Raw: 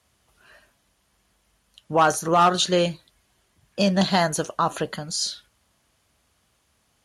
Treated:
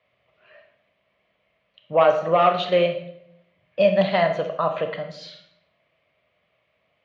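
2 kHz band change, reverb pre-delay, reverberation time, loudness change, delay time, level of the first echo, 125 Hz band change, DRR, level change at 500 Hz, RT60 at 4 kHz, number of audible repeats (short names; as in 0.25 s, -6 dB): 0.0 dB, 26 ms, 0.75 s, +1.0 dB, none, none, -4.0 dB, 6.0 dB, +5.5 dB, 0.55 s, none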